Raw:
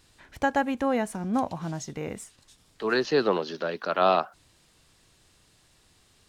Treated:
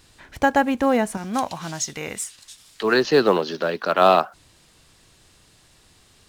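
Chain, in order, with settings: 1.17–2.83 tilt shelf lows -8 dB, about 1100 Hz; in parallel at -12 dB: short-mantissa float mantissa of 2-bit; on the sum: gain +4.5 dB

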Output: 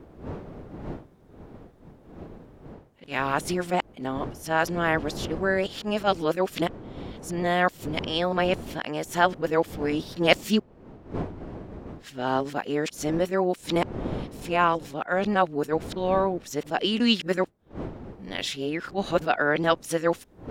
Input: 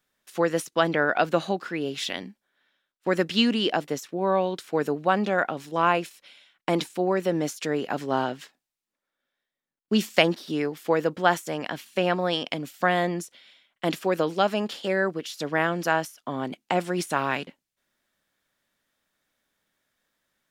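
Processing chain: whole clip reversed; wind noise 370 Hz -40 dBFS; attack slew limiter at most 310 dB/s

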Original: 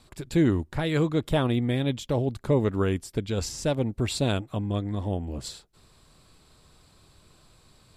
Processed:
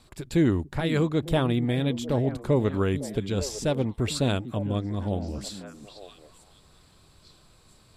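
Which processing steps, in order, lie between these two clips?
delay with a stepping band-pass 0.45 s, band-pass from 210 Hz, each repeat 1.4 oct, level -7.5 dB

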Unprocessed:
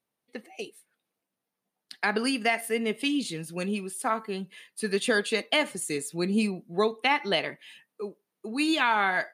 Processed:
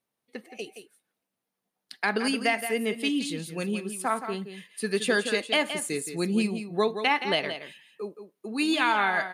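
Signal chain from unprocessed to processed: echo 0.171 s -9.5 dB

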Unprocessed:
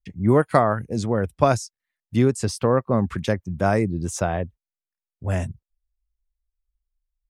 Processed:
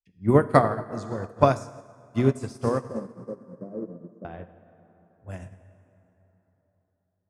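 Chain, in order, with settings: 2.9–4.25 elliptic band-pass 170–550 Hz; plate-style reverb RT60 4 s, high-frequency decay 0.5×, DRR 3.5 dB; upward expander 2.5:1, over -28 dBFS; gain +1 dB

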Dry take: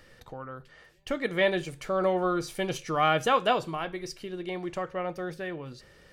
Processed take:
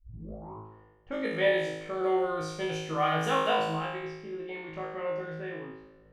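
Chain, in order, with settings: tape start at the beginning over 0.69 s; low-pass opened by the level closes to 690 Hz, open at -24.5 dBFS; flutter echo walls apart 3.2 m, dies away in 0.9 s; gain -7.5 dB

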